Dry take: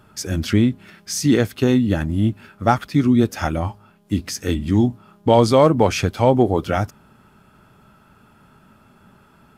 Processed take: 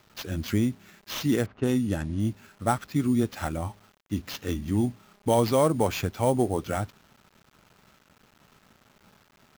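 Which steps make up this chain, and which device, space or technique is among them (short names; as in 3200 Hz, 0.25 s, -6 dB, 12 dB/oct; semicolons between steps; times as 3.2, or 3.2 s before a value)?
early 8-bit sampler (sample-rate reducer 9300 Hz, jitter 0%; bit-crush 8-bit); 1.46–2.2 low-pass opened by the level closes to 1100 Hz, open at -13.5 dBFS; gain -8.5 dB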